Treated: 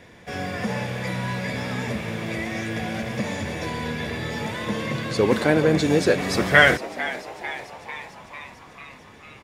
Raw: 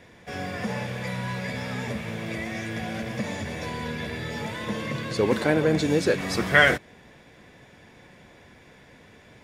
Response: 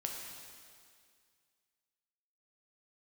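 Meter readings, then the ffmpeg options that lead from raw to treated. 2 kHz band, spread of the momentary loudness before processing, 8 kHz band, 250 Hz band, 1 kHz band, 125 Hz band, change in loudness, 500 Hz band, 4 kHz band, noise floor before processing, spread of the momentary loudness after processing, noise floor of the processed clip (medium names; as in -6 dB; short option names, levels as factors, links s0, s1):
+3.0 dB, 11 LU, +3.5 dB, +3.0 dB, +4.0 dB, +3.0 dB, +3.0 dB, +3.5 dB, +3.5 dB, -53 dBFS, 19 LU, -47 dBFS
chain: -filter_complex "[0:a]asplit=8[s0][s1][s2][s3][s4][s5][s6][s7];[s1]adelay=447,afreqshift=110,volume=0.188[s8];[s2]adelay=894,afreqshift=220,volume=0.12[s9];[s3]adelay=1341,afreqshift=330,volume=0.0767[s10];[s4]adelay=1788,afreqshift=440,volume=0.0495[s11];[s5]adelay=2235,afreqshift=550,volume=0.0316[s12];[s6]adelay=2682,afreqshift=660,volume=0.0202[s13];[s7]adelay=3129,afreqshift=770,volume=0.0129[s14];[s0][s8][s9][s10][s11][s12][s13][s14]amix=inputs=8:normalize=0,volume=1.41"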